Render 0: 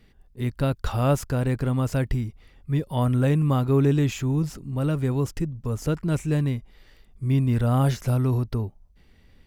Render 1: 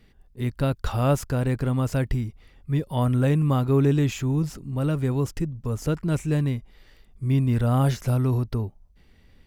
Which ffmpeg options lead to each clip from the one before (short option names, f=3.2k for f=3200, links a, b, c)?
-af anull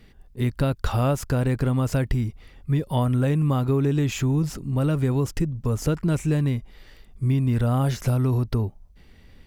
-af "acompressor=threshold=-23dB:ratio=6,volume=5dB"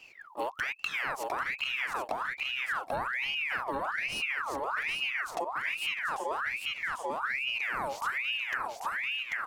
-af "aecho=1:1:791|1582|2373|3164:0.562|0.157|0.0441|0.0123,acompressor=threshold=-28dB:ratio=6,aeval=exprs='val(0)*sin(2*PI*1700*n/s+1700*0.6/1.2*sin(2*PI*1.2*n/s))':c=same"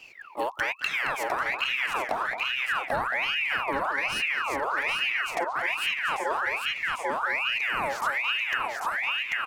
-filter_complex "[0:a]asplit=2[a][b];[b]adelay=220,highpass=300,lowpass=3.4k,asoftclip=type=hard:threshold=-25.5dB,volume=-7dB[c];[a][c]amix=inputs=2:normalize=0,volume=4.5dB"